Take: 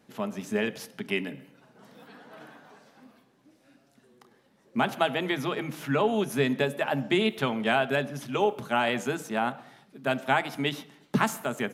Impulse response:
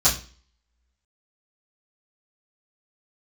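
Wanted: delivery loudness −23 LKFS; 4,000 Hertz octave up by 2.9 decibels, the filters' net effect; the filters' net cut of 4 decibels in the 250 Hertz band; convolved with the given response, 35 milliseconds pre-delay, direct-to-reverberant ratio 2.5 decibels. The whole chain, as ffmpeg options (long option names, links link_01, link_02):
-filter_complex "[0:a]equalizer=frequency=250:width_type=o:gain=-5,equalizer=frequency=4000:width_type=o:gain=4,asplit=2[link_01][link_02];[1:a]atrim=start_sample=2205,adelay=35[link_03];[link_02][link_03]afir=irnorm=-1:irlink=0,volume=-18dB[link_04];[link_01][link_04]amix=inputs=2:normalize=0,volume=4dB"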